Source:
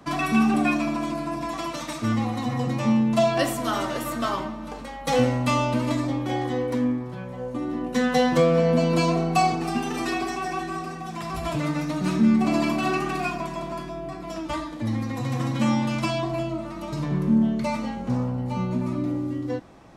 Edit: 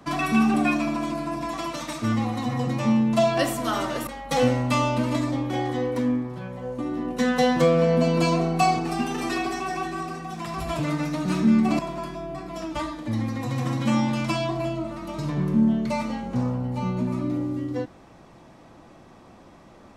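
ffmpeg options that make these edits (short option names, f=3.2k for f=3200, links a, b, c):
-filter_complex "[0:a]asplit=3[a][b][c];[a]atrim=end=4.072[d];[b]atrim=start=4.828:end=12.552[e];[c]atrim=start=13.528[f];[d][e]acrossfade=d=0.004:c1=hsin:c2=hsin[g];[g][f]acrossfade=d=0.004:c1=hsin:c2=hsin"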